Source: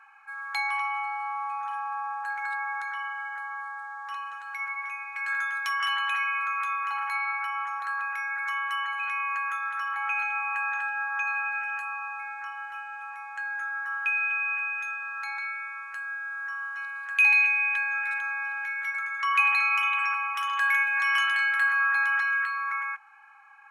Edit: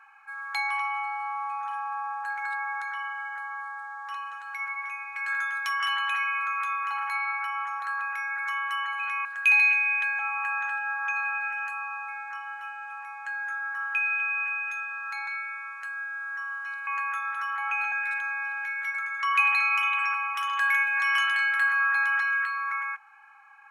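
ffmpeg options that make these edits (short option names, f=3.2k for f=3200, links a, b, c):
-filter_complex "[0:a]asplit=5[a][b][c][d][e];[a]atrim=end=9.252[f];[b]atrim=start=16.978:end=17.922[g];[c]atrim=start=10.298:end=16.982[h];[d]atrim=start=9.248:end=10.302[i];[e]atrim=start=17.918[j];[f][g]acrossfade=d=0.004:c1=hsin:c2=hsin[k];[k][h]acrossfade=d=0.004:c1=hsin:c2=hsin[l];[l][i]acrossfade=d=0.004:c1=hsin:c2=hsin[m];[m][j]acrossfade=d=0.004:c1=hsin:c2=hsin"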